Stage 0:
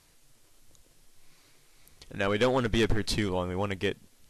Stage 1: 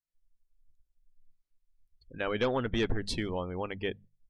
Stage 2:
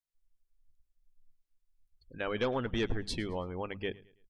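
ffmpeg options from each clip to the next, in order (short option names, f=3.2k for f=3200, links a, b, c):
-af "afftdn=nr=34:nf=-41,bandreject=f=50:t=h:w=6,bandreject=f=100:t=h:w=6,bandreject=f=150:t=h:w=6,bandreject=f=200:t=h:w=6,volume=-4dB"
-af "aecho=1:1:109|218|327:0.0794|0.0302|0.0115,volume=-2.5dB"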